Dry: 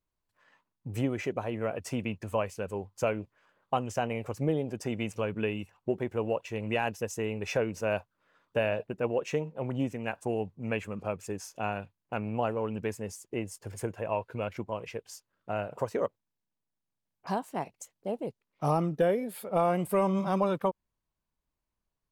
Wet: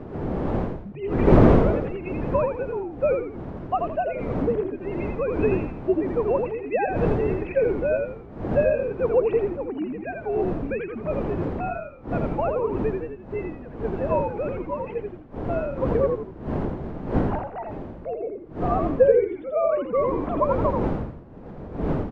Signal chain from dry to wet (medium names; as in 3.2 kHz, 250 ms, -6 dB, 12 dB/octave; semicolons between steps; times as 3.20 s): formants replaced by sine waves; wind noise 400 Hz -34 dBFS; treble shelf 2.9 kHz -11.5 dB; on a send: frequency-shifting echo 83 ms, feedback 37%, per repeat -56 Hz, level -4 dB; on the sum: trim +5 dB